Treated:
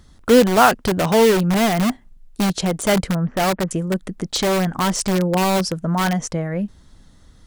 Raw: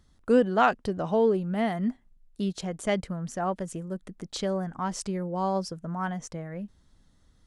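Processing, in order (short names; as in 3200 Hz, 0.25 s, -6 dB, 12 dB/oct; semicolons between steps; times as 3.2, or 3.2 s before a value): 3.16–3.71 LPF 1900 Hz 24 dB/oct; in parallel at -3 dB: wrapped overs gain 25 dB; on the sum: gain +8.5 dB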